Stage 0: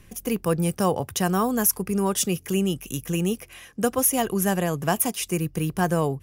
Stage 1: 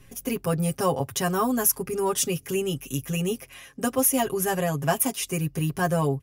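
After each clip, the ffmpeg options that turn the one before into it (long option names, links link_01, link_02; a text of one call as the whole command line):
ffmpeg -i in.wav -af "aecho=1:1:7.4:0.95,volume=-3.5dB" out.wav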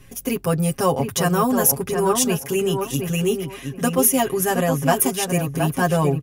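ffmpeg -i in.wav -filter_complex "[0:a]asplit=2[link_01][link_02];[link_02]adelay=720,lowpass=frequency=1900:poles=1,volume=-5dB,asplit=2[link_03][link_04];[link_04]adelay=720,lowpass=frequency=1900:poles=1,volume=0.23,asplit=2[link_05][link_06];[link_06]adelay=720,lowpass=frequency=1900:poles=1,volume=0.23[link_07];[link_01][link_03][link_05][link_07]amix=inputs=4:normalize=0,volume=4.5dB" out.wav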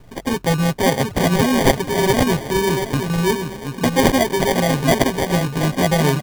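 ffmpeg -i in.wav -filter_complex "[0:a]asplit=5[link_01][link_02][link_03][link_04][link_05];[link_02]adelay=345,afreqshift=36,volume=-18dB[link_06];[link_03]adelay=690,afreqshift=72,volume=-23.7dB[link_07];[link_04]adelay=1035,afreqshift=108,volume=-29.4dB[link_08];[link_05]adelay=1380,afreqshift=144,volume=-35dB[link_09];[link_01][link_06][link_07][link_08][link_09]amix=inputs=5:normalize=0,acrusher=samples=33:mix=1:aa=0.000001,volume=2.5dB" out.wav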